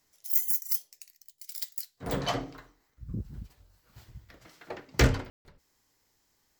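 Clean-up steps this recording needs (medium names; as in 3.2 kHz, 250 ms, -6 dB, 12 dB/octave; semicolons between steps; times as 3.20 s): room tone fill 5.30–5.45 s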